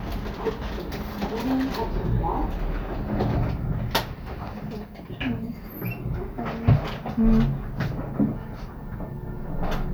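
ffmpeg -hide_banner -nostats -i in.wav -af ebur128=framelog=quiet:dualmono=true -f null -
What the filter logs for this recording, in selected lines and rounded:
Integrated loudness:
  I:         -24.9 LUFS
  Threshold: -35.0 LUFS
Loudness range:
  LRA:         3.6 LU
  Threshold: -44.5 LUFS
  LRA low:   -26.5 LUFS
  LRA high:  -22.9 LUFS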